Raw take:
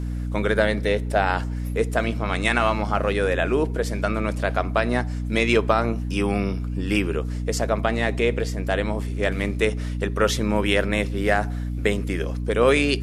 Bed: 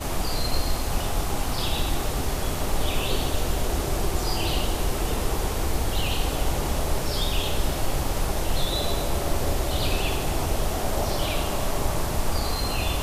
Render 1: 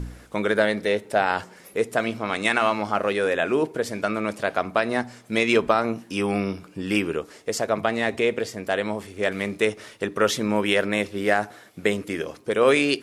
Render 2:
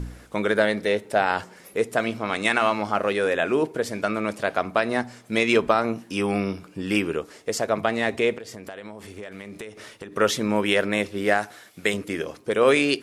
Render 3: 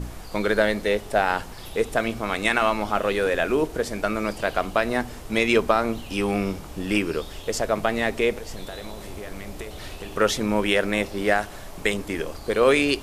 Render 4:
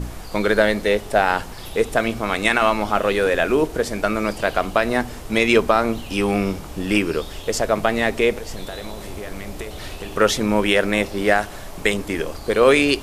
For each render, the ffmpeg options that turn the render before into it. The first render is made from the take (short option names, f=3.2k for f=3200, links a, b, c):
-af "bandreject=f=60:t=h:w=4,bandreject=f=120:t=h:w=4,bandreject=f=180:t=h:w=4,bandreject=f=240:t=h:w=4,bandreject=f=300:t=h:w=4"
-filter_complex "[0:a]asettb=1/sr,asplit=3[a][b][c];[a]atrim=end=8.364[d];[b]atrim=start=8.36:end=10.13,asetpts=PTS-STARTPTS,afade=t=in:d=0.004:c=qsin,afade=t=out:st=1.766:d=0.004:c=qsin,acompressor=threshold=-33dB:ratio=10:attack=3.2:release=140:knee=1:detection=peak[e];[c]atrim=start=10.126[f];[d][e]acrossfade=d=0.004:c1=hsin:c2=qsin[g];[g][f]acrossfade=d=0.004:c1=qsin:c2=hsin,asettb=1/sr,asplit=3[h][i][j];[h]atrim=end=11.384[k];[i]atrim=start=11.38:end=11.94,asetpts=PTS-STARTPTS,afade=t=in:d=0.004:c=qsin,afade=t=out:st=0.556:d=0.004:c=qsin,tiltshelf=f=1.3k:g=-4.5[l];[j]atrim=start=11.936[m];[k][l]acrossfade=d=0.004:c1=hsin:c2=qsin[n];[n][m]acrossfade=d=0.004:c1=qsin:c2=hsin"
-filter_complex "[1:a]volume=-14dB[a];[0:a][a]amix=inputs=2:normalize=0"
-af "volume=4dB,alimiter=limit=-2dB:level=0:latency=1"